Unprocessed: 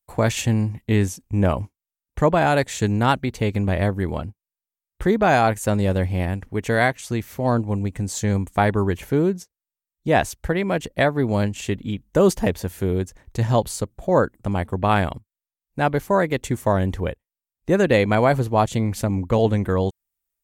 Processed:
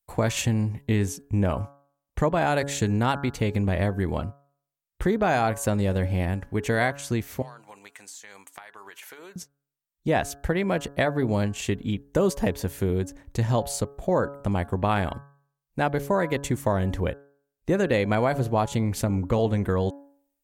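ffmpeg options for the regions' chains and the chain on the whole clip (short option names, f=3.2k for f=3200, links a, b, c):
-filter_complex "[0:a]asettb=1/sr,asplit=3[a][b][c];[a]atrim=end=7.424[d];[b]atrim=start=7.42:end=9.36,asetpts=PTS-STARTPTS,afade=t=in:d=0.004:c=qsin,afade=t=out:st=1.936:d=0.004:c=qsin,highpass=1.2k,acompressor=threshold=-39dB:ratio=16:attack=3.2:release=140:knee=1:detection=peak[e];[c]atrim=start=9.356[f];[d][e]acrossfade=d=0.004:c1=hsin:c2=qsin[g];[g][f]acrossfade=d=0.004:c1=qsin:c2=hsin,bandreject=f=140.8:t=h:w=4,bandreject=f=281.6:t=h:w=4,bandreject=f=422.4:t=h:w=4,bandreject=f=563.2:t=h:w=4,bandreject=f=704:t=h:w=4,bandreject=f=844.8:t=h:w=4,bandreject=f=985.6:t=h:w=4,bandreject=f=1.1264k:t=h:w=4,bandreject=f=1.2672k:t=h:w=4,bandreject=f=1.408k:t=h:w=4,bandreject=f=1.5488k:t=h:w=4,bandreject=f=1.6896k:t=h:w=4,acompressor=threshold=-21dB:ratio=2.5"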